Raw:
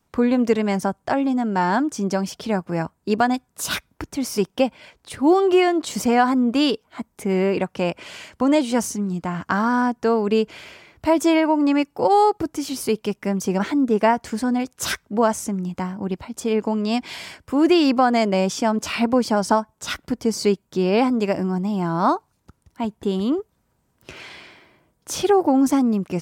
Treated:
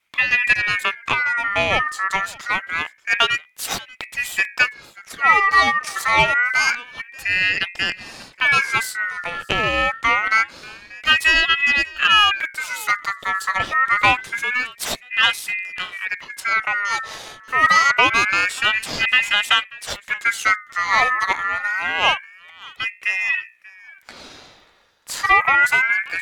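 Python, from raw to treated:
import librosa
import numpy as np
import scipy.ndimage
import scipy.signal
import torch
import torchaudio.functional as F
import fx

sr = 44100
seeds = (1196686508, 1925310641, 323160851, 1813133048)

y = fx.cheby_harmonics(x, sr, harmonics=(6, 7), levels_db=(-25, -29), full_scale_db=-5.5)
y = fx.wow_flutter(y, sr, seeds[0], rate_hz=2.1, depth_cents=23.0)
y = fx.hum_notches(y, sr, base_hz=60, count=7)
y = y + 10.0 ** (-22.0 / 20.0) * np.pad(y, (int(586 * sr / 1000.0), 0))[:len(y)]
y = fx.ring_lfo(y, sr, carrier_hz=1900.0, swing_pct=20, hz=0.26)
y = F.gain(torch.from_numpy(y), 4.5).numpy()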